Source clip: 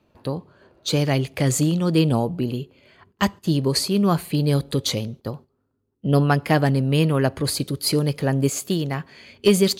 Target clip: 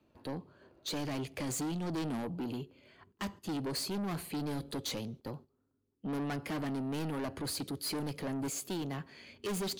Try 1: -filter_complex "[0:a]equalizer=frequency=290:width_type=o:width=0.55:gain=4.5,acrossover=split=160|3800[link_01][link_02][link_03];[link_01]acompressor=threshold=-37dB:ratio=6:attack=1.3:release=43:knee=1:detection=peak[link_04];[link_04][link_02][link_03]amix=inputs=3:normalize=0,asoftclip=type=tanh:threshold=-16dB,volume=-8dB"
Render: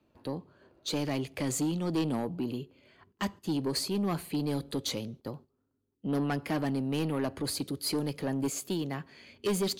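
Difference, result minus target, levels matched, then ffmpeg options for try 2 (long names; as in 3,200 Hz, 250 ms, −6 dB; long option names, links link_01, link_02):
soft clipping: distortion −6 dB
-filter_complex "[0:a]equalizer=frequency=290:width_type=o:width=0.55:gain=4.5,acrossover=split=160|3800[link_01][link_02][link_03];[link_01]acompressor=threshold=-37dB:ratio=6:attack=1.3:release=43:knee=1:detection=peak[link_04];[link_04][link_02][link_03]amix=inputs=3:normalize=0,asoftclip=type=tanh:threshold=-25dB,volume=-8dB"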